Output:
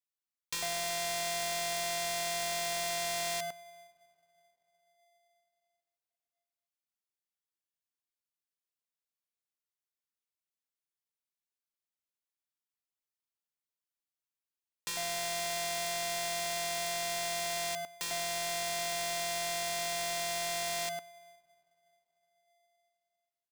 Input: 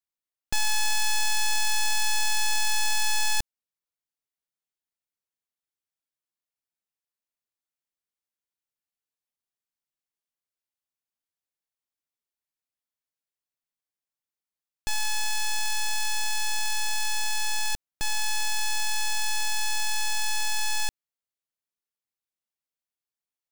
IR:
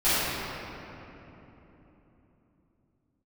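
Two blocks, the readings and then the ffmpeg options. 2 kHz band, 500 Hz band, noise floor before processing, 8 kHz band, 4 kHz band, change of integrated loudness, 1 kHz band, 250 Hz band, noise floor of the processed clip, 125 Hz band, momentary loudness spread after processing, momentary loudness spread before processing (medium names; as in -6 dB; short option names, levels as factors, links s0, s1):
-8.0 dB, +19.5 dB, under -85 dBFS, -7.0 dB, -7.0 dB, -6.5 dB, -4.0 dB, +4.0 dB, under -85 dBFS, -6.0 dB, 4 LU, 5 LU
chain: -filter_complex "[0:a]lowshelf=f=450:g=-9.5,asplit=2[s0][s1];[1:a]atrim=start_sample=2205,lowpass=1100[s2];[s1][s2]afir=irnorm=-1:irlink=0,volume=0.01[s3];[s0][s3]amix=inputs=2:normalize=0,acompressor=threshold=0.0447:ratio=6,acrossover=split=910[s4][s5];[s4]adelay=100[s6];[s6][s5]amix=inputs=2:normalize=0,aeval=exprs='val(0)*sgn(sin(2*PI*690*n/s))':c=same,volume=0.631"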